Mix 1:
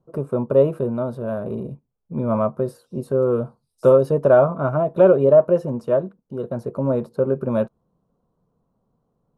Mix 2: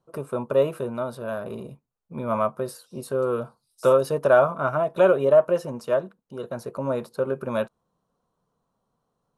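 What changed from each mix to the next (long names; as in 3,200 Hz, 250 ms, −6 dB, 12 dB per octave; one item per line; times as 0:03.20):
master: add tilt shelving filter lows −9.5 dB, about 920 Hz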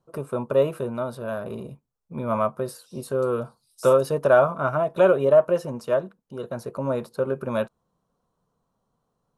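first voice: add low-shelf EQ 140 Hz +4 dB
second voice +6.0 dB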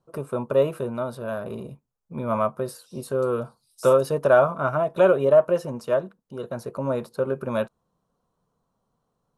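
nothing changed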